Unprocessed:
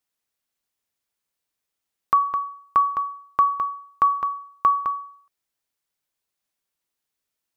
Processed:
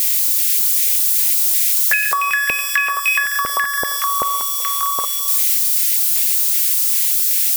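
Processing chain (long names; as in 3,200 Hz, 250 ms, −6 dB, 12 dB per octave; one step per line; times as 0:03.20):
spike at every zero crossing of −23 dBFS
rectangular room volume 1,300 cubic metres, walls mixed, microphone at 1.2 metres
delay with pitch and tempo change per echo 493 ms, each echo +7 semitones, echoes 2
auto-filter high-pass square 2.6 Hz 540–2,000 Hz
low-shelf EQ 390 Hz +10.5 dB
0:02.99–0:05.05: multiband delay without the direct sound highs, lows 180 ms, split 1,200 Hz
downward compressor 6 to 1, threshold −19 dBFS, peak gain reduction 10 dB
high-shelf EQ 2,100 Hz +10 dB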